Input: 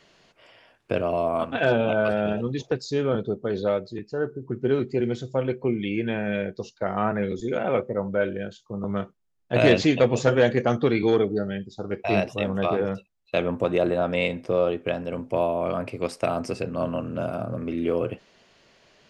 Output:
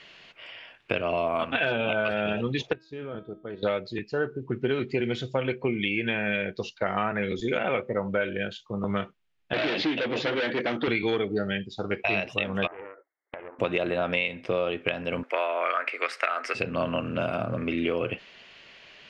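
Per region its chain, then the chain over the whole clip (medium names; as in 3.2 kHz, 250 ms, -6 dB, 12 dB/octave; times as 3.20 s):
2.73–3.63 s: low-pass 1.2 kHz 6 dB/octave + level held to a coarse grid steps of 9 dB + feedback comb 320 Hz, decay 0.58 s, mix 70%
9.53–10.88 s: overload inside the chain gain 24.5 dB + cabinet simulation 190–4900 Hz, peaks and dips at 310 Hz +8 dB, 1.1 kHz -5 dB, 2.6 kHz -5 dB
12.67–13.59 s: compression 12:1, threshold -37 dBFS + brick-wall FIR band-pass 280–2200 Hz + loudspeaker Doppler distortion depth 0.36 ms
15.23–16.55 s: Bessel high-pass 550 Hz, order 8 + high-order bell 1.6 kHz +11 dB 1 oct
whole clip: peaking EQ 2.7 kHz +15 dB 1.8 oct; compression 6:1, threshold -22 dBFS; treble shelf 5 kHz -9.5 dB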